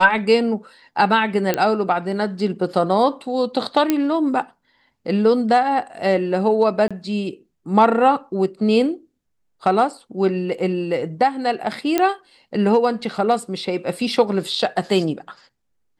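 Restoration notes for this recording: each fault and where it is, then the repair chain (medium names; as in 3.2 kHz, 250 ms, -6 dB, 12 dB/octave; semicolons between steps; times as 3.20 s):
1.54 s: pop -5 dBFS
3.90 s: pop -4 dBFS
6.88–6.91 s: dropout 26 ms
11.98 s: pop -5 dBFS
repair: de-click; interpolate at 6.88 s, 26 ms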